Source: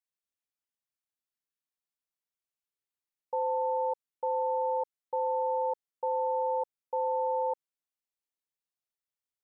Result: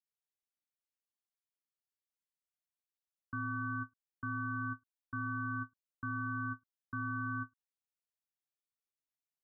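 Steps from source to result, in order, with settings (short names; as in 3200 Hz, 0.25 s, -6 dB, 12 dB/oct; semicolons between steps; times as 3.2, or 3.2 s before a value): ring modulator 630 Hz; ending taper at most 510 dB/s; gain -5 dB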